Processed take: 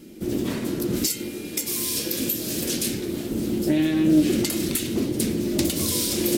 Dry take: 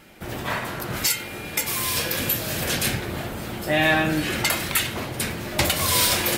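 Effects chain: 1.3–3.31 low shelf 460 Hz -7.5 dB; compressor, threshold -22 dBFS, peak gain reduction 7.5 dB; EQ curve 130 Hz 0 dB, 230 Hz +11 dB, 330 Hz +13 dB, 740 Hz -11 dB, 1600 Hz -12 dB, 5600 Hz +3 dB; Doppler distortion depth 0.19 ms

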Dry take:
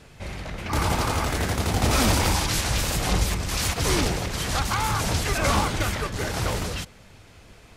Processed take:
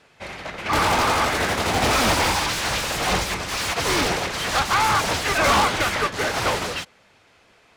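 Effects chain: overdrive pedal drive 26 dB, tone 3100 Hz, clips at -9 dBFS; upward expander 2.5:1, over -29 dBFS

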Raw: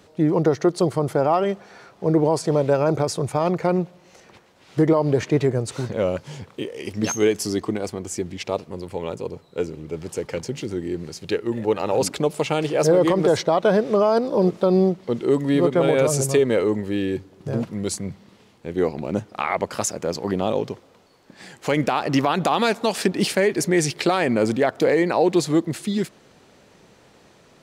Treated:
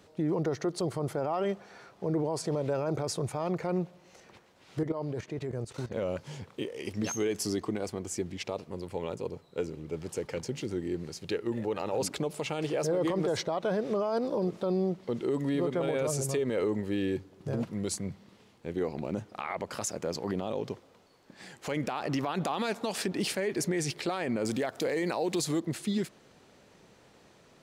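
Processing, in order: 4.83–5.92 level quantiser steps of 14 dB; 24.45–25.6 high shelf 4000 Hz +10.5 dB; limiter -15.5 dBFS, peak gain reduction 8 dB; gain -6 dB

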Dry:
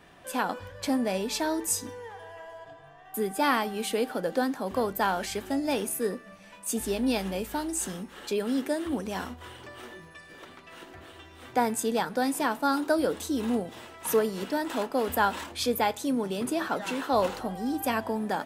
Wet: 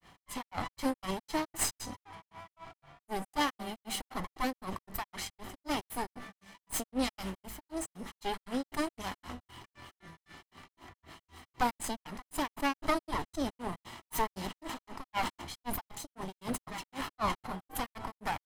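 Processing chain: minimum comb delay 0.97 ms; grains 0.173 s, grains 3.9/s, pitch spread up and down by 0 st; sustainer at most 59 dB/s

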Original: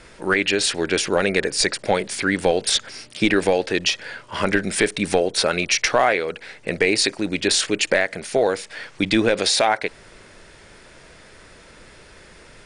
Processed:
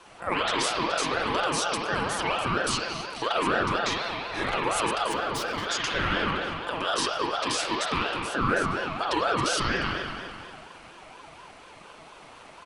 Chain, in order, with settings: comb 5.9 ms, depth 61%; limiter -12 dBFS, peak gain reduction 8.5 dB; 5.06–5.66 hard clip -24 dBFS, distortion -17 dB; spring tank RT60 2.2 s, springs 43 ms, chirp 65 ms, DRR -3 dB; ring modulator with a swept carrier 840 Hz, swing 25%, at 4.2 Hz; gain -5 dB

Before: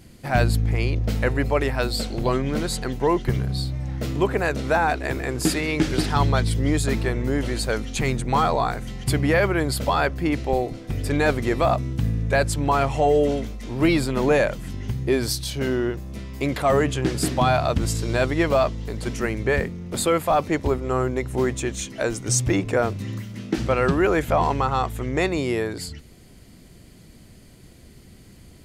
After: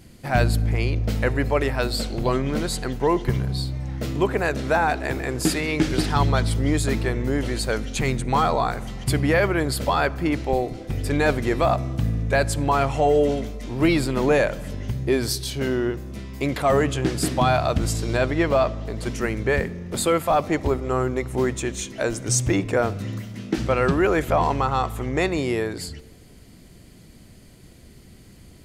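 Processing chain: 18.17–18.97 high shelf 6300 Hz -8.5 dB; reverb RT60 1.7 s, pre-delay 15 ms, DRR 19.5 dB

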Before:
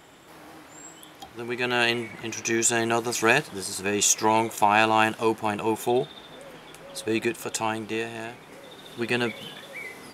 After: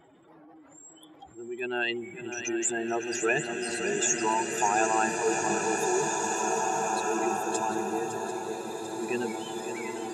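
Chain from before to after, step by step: spectral contrast raised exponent 2.3; swung echo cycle 0.743 s, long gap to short 3:1, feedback 53%, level -10 dB; bloom reverb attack 2.31 s, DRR 0.5 dB; gain -6 dB

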